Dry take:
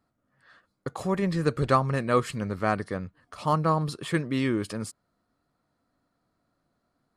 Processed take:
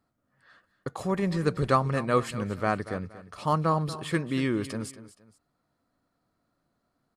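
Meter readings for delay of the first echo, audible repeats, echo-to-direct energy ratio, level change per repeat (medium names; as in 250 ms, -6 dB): 235 ms, 2, -14.5 dB, -9.5 dB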